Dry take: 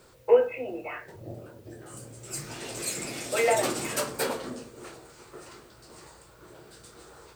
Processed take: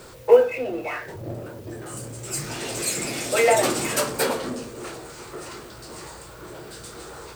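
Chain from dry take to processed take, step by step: G.711 law mismatch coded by mu; gain +5 dB

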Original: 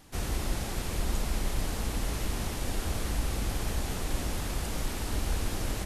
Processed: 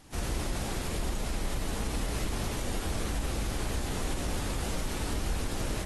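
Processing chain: limiter -23 dBFS, peak gain reduction 6 dB; AAC 32 kbps 32000 Hz

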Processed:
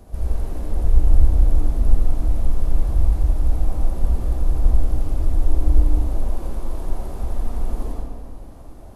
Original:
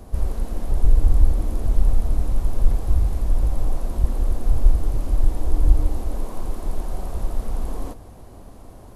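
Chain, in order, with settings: notch 1100 Hz, Q 21; reverb RT60 1.6 s, pre-delay 62 ms, DRR -2 dB; gain -4.5 dB

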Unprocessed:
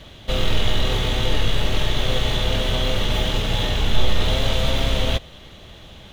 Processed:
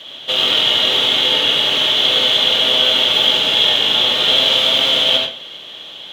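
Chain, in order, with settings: HPF 380 Hz 12 dB/oct; bell 3200 Hz +14 dB 0.43 oct; reverb RT60 0.40 s, pre-delay 69 ms, DRR 1 dB; gain +2.5 dB

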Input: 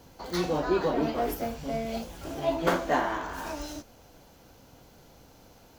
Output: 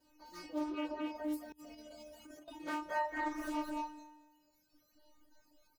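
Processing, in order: bell 3500 Hz -8 dB 0.24 oct; 3.1–3.51 reverb throw, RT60 0.84 s, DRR -9.5 dB; metallic resonator 300 Hz, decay 0.84 s, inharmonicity 0.002; feedback echo 0.22 s, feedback 30%, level -3.5 dB; reverb removal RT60 1.3 s; 1.52–2.48 negative-ratio compressor -60 dBFS, ratio -0.5; notches 50/100/150 Hz; Doppler distortion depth 0.15 ms; gain +6.5 dB

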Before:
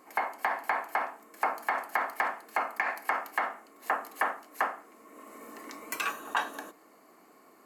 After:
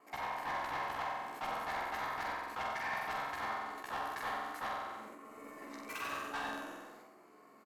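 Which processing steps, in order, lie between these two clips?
local time reversal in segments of 64 ms; overloaded stage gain 31 dB; LPF 4000 Hz 6 dB/oct; doubler 14 ms -4.5 dB; flutter echo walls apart 7.9 m, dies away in 0.9 s; sustainer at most 32 dB/s; gain -6.5 dB

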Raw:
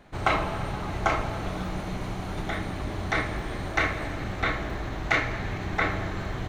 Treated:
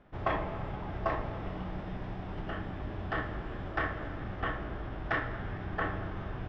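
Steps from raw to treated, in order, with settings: air absorption 180 m; formant shift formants -3 st; gain -6 dB

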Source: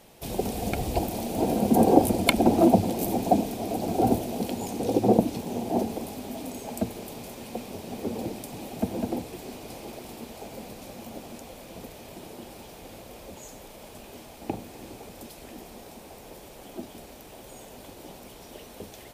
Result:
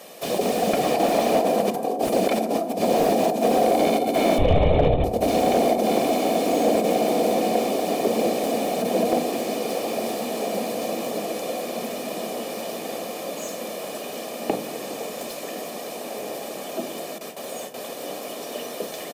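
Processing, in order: 0.83–1.89 bell 1400 Hz +5.5 dB 2.4 oct; on a send: diffused feedback echo 1.858 s, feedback 51%, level -8 dB; 17.18–17.9 on the sum: gate with hold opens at -33 dBFS; negative-ratio compressor -27 dBFS, ratio -1; HPF 210 Hz 24 dB/oct; 4.38–5.04 LPC vocoder at 8 kHz whisper; comb 1.7 ms, depth 52%; FDN reverb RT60 1.3 s, low-frequency decay 1.5×, high-frequency decay 0.3×, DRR 10.5 dB; slew limiter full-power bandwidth 65 Hz; gain +7.5 dB

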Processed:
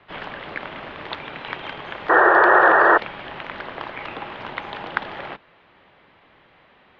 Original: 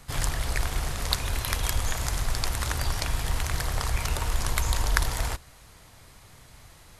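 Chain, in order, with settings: mistuned SSB -110 Hz 230–3300 Hz; painted sound noise, 2.09–2.98, 320–1900 Hz -16 dBFS; gain +2.5 dB

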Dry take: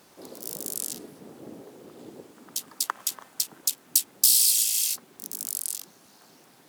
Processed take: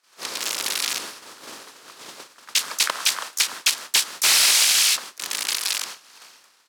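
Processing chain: per-bin compression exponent 0.6; gate -37 dBFS, range -36 dB; harmoniser -12 st -6 dB, +4 st -8 dB; wavefolder -14 dBFS; band-pass 2600 Hz, Q 0.55; gain +8.5 dB

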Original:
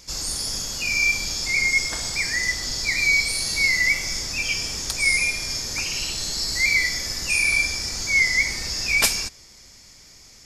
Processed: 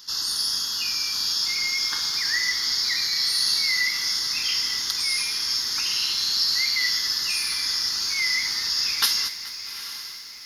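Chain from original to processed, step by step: in parallel at +1.5 dB: limiter -14.5 dBFS, peak gain reduction 10 dB; on the sum: HPF 1300 Hz 6 dB/oct; fixed phaser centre 2300 Hz, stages 6; diffused feedback echo 0.846 s, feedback 42%, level -12 dB; lo-fi delay 0.215 s, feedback 55%, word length 7-bit, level -14 dB

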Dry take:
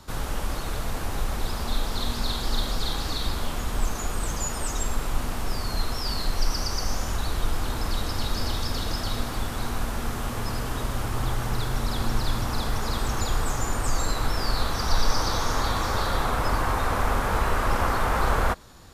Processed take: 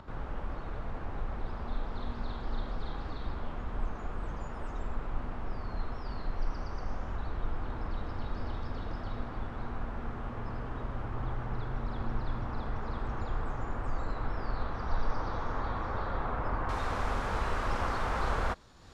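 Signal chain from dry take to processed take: LPF 1700 Hz 12 dB/oct, from 16.69 s 6200 Hz; upward compressor, threshold -35 dBFS; gain -8 dB

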